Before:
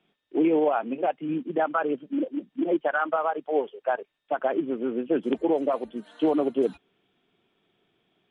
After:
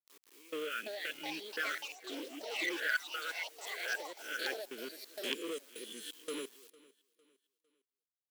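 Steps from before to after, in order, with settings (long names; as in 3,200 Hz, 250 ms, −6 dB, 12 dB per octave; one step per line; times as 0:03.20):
peak hold with a rise ahead of every peak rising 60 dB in 0.48 s
Chebyshev band-stop filter 470–1,500 Hz, order 3
high-shelf EQ 2,700 Hz +8.5 dB
leveller curve on the samples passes 1
gate pattern "x..xx.xx." 86 BPM −24 dB
centre clipping without the shift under −51.5 dBFS
repeating echo 454 ms, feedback 38%, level −22.5 dB
delay with pitch and tempo change per echo 470 ms, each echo +5 semitones, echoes 3, each echo −6 dB
first difference
level +5.5 dB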